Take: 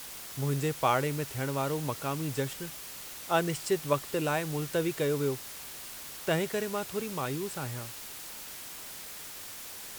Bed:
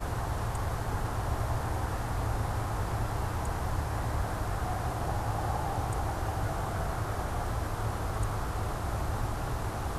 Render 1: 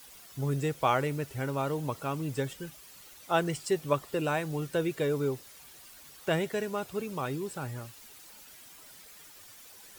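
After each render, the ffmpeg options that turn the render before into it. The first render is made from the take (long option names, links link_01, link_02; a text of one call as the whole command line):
ffmpeg -i in.wav -af "afftdn=noise_reduction=11:noise_floor=-44" out.wav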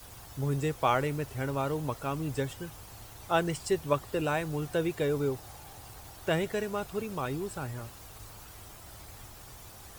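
ffmpeg -i in.wav -i bed.wav -filter_complex "[1:a]volume=-18.5dB[link_01];[0:a][link_01]amix=inputs=2:normalize=0" out.wav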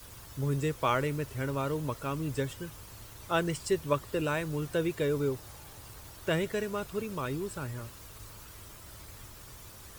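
ffmpeg -i in.wav -af "equalizer=frequency=760:width_type=o:width=0.25:gain=-10.5" out.wav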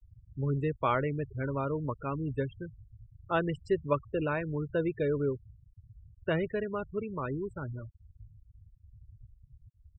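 ffmpeg -i in.wav -af "afftfilt=real='re*gte(hypot(re,im),0.0224)':imag='im*gte(hypot(re,im),0.0224)':win_size=1024:overlap=0.75,lowpass=2500" out.wav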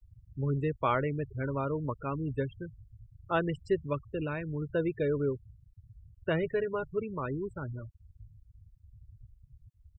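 ffmpeg -i in.wav -filter_complex "[0:a]asettb=1/sr,asplit=3[link_01][link_02][link_03];[link_01]atrim=end=3.864[link_04];[link_02]atrim=start=3.86:end=4.62,asetpts=PTS-STARTPTS,afade=type=in:duration=0.004:curve=qsin,afade=type=out:start_time=0.756:duration=0.004:curve=qsin,equalizer=frequency=870:width=0.59:gain=-7[link_05];[link_03]atrim=start=4.616[link_06];[link_04][link_05]acrossfade=duration=0.004:curve1=hsin:curve2=qsin[link_07];[link_07][link_06]acrossfade=duration=0.004:curve1=qsin:curve2=hsin,asplit=3[link_08][link_09][link_10];[link_08]afade=type=out:start_time=6.41:duration=0.02[link_11];[link_09]aecho=1:1:7:0.6,afade=type=in:start_time=6.41:duration=0.02,afade=type=out:start_time=6.98:duration=0.02[link_12];[link_10]afade=type=in:start_time=6.98:duration=0.02[link_13];[link_11][link_12][link_13]amix=inputs=3:normalize=0" out.wav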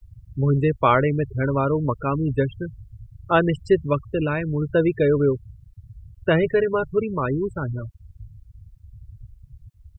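ffmpeg -i in.wav -af "volume=11dB" out.wav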